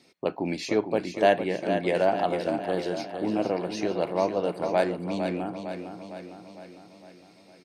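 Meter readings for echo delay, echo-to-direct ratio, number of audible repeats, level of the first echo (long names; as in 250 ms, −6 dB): 456 ms, −6.5 dB, 6, −8.0 dB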